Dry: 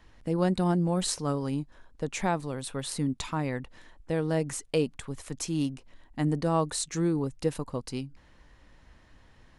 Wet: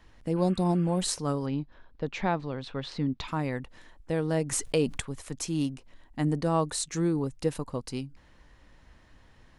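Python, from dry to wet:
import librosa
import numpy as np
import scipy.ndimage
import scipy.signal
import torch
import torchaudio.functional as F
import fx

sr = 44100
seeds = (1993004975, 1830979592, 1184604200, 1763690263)

y = fx.spec_repair(x, sr, seeds[0], start_s=0.39, length_s=0.58, low_hz=1100.0, high_hz=3400.0, source='before')
y = fx.lowpass(y, sr, hz=4600.0, slope=24, at=(1.45, 3.27), fade=0.02)
y = fx.env_flatten(y, sr, amount_pct=50, at=(4.51, 5.0), fade=0.02)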